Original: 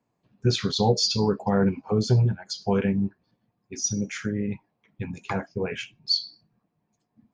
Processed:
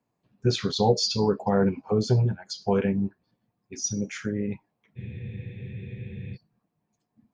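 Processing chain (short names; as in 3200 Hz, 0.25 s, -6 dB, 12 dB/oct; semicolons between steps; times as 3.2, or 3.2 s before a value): dynamic EQ 550 Hz, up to +4 dB, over -34 dBFS, Q 0.71; spectral freeze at 4.99, 1.37 s; gain -2.5 dB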